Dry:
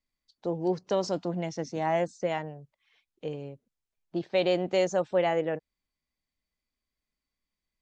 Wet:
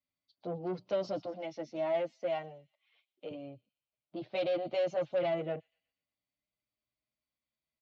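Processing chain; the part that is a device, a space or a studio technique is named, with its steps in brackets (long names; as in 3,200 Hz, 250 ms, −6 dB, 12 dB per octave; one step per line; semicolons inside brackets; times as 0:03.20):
0:01.25–0:03.31: Bessel high-pass filter 320 Hz, order 2
delay with a high-pass on its return 121 ms, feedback 46%, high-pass 5,500 Hz, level −12 dB
barber-pole flanger into a guitar amplifier (barber-pole flanger 8.5 ms +0.35 Hz; soft clipping −27.5 dBFS, distortion −11 dB; loudspeaker in its box 96–4,200 Hz, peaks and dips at 120 Hz +4 dB, 200 Hz −4 dB, 430 Hz −7 dB, 610 Hz +6 dB, 950 Hz −5 dB, 1,700 Hz −9 dB)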